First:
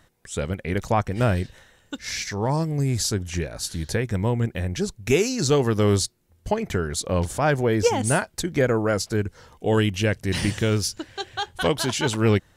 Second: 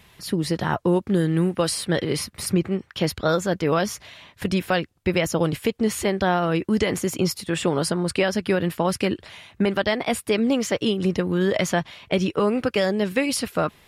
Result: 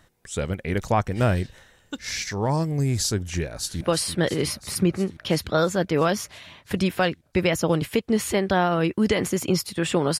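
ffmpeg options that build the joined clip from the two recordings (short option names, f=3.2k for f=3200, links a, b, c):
-filter_complex "[0:a]apad=whole_dur=10.19,atrim=end=10.19,atrim=end=3.812[a];[1:a]atrim=start=1.518:end=7.9[b];[a][b]acrossfade=d=0.004:c1=hsin:c2=hsin,asplit=2[c][d];[d]afade=t=in:st=3.48:d=0.01,afade=t=out:st=3.81:d=0.01,aecho=0:1:340|680|1020|1360|1700|2040|2380|2720|3060|3400|3740|4080:0.375837|0.281878|0.211409|0.158556|0.118917|0.089188|0.066891|0.0501682|0.0376262|0.0282196|0.0211647|0.0158735[e];[c][e]amix=inputs=2:normalize=0"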